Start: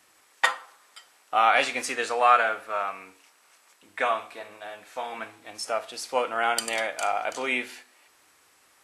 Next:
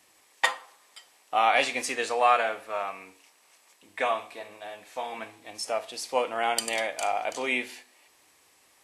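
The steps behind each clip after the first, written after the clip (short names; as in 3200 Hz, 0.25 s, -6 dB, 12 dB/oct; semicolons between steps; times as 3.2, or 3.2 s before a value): bell 1400 Hz -9 dB 0.4 oct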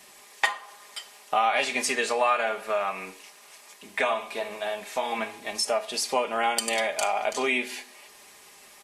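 comb 4.9 ms, depth 67%; compressor 2.5:1, threshold -35 dBFS, peak gain reduction 13.5 dB; gain +9 dB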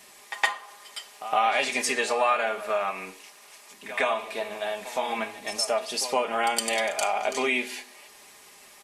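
pre-echo 0.114 s -13 dB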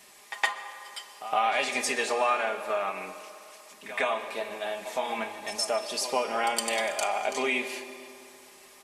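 reverb RT60 2.6 s, pre-delay 0.121 s, DRR 11 dB; gain -2.5 dB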